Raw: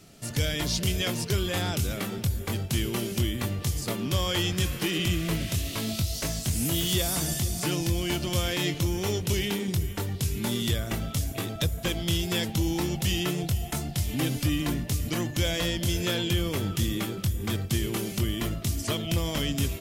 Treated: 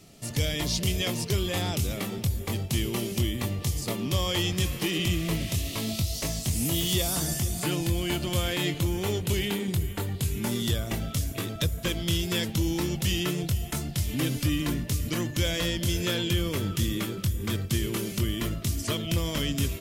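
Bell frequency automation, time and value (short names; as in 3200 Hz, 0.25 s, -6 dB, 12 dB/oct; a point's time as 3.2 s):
bell -9 dB 0.24 oct
7.02 s 1500 Hz
7.56 s 5600 Hz
10.28 s 5600 Hz
11.21 s 760 Hz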